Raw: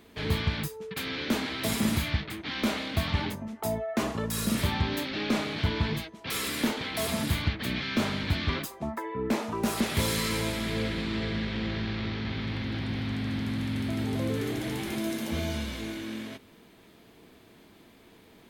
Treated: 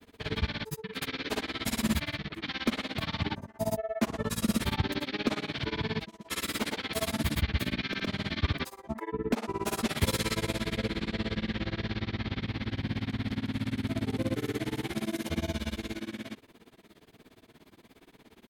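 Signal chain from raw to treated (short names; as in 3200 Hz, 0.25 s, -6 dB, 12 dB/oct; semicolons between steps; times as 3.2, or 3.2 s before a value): grains 64 ms, grains 17/s, spray 83 ms, pitch spread up and down by 0 st; gain +2 dB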